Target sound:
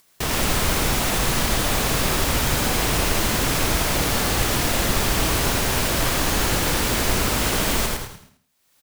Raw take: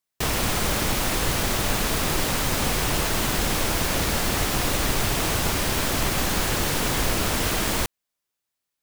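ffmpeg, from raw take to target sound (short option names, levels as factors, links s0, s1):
-filter_complex "[0:a]asplit=2[s0][s1];[s1]asplit=4[s2][s3][s4][s5];[s2]adelay=107,afreqshift=-68,volume=0.631[s6];[s3]adelay=214,afreqshift=-136,volume=0.202[s7];[s4]adelay=321,afreqshift=-204,volume=0.0646[s8];[s5]adelay=428,afreqshift=-272,volume=0.0207[s9];[s6][s7][s8][s9]amix=inputs=4:normalize=0[s10];[s0][s10]amix=inputs=2:normalize=0,acompressor=mode=upward:threshold=0.00891:ratio=2.5,asplit=2[s11][s12];[s12]aecho=0:1:82|164|246|328:0.501|0.16|0.0513|0.0164[s13];[s11][s13]amix=inputs=2:normalize=0"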